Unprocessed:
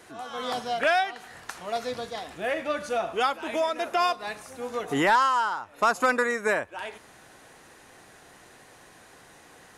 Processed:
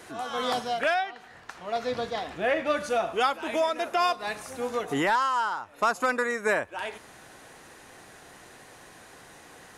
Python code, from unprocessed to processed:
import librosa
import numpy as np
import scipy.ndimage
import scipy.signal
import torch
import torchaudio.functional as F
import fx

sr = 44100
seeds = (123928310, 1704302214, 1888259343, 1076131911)

y = fx.peak_eq(x, sr, hz=11000.0, db=-11.5, octaves=1.4, at=(0.94, 2.67))
y = fx.rider(y, sr, range_db=4, speed_s=0.5)